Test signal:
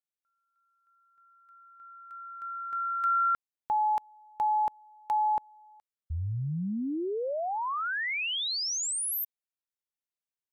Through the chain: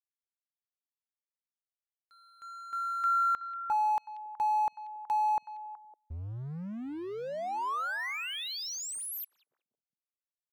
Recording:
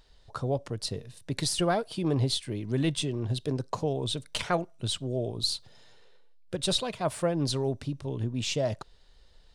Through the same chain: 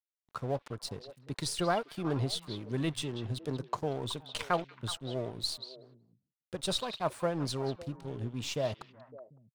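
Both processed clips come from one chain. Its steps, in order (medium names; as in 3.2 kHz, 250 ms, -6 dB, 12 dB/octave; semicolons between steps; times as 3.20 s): crossover distortion -44.5 dBFS; dynamic bell 1.1 kHz, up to +6 dB, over -43 dBFS, Q 0.99; repeats whose band climbs or falls 186 ms, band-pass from 3.2 kHz, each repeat -1.4 oct, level -9 dB; trim -5 dB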